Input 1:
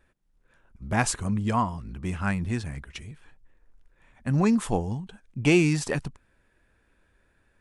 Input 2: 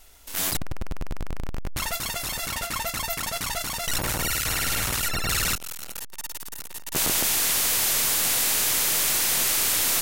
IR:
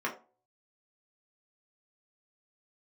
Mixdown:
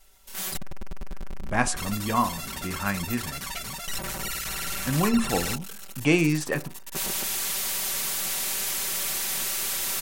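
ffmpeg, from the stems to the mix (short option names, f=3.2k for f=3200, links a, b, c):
-filter_complex "[0:a]highpass=100,adelay=600,volume=-1.5dB,asplit=2[a][b];[b]volume=-11.5dB[c];[1:a]aecho=1:1:5.2:0.93,volume=-8.5dB[d];[2:a]atrim=start_sample=2205[e];[c][e]afir=irnorm=-1:irlink=0[f];[a][d][f]amix=inputs=3:normalize=0"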